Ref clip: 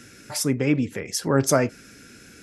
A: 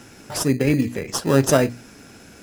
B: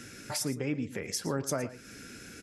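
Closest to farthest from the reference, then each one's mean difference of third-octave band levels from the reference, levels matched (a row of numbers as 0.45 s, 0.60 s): A, B; 5.0 dB, 7.0 dB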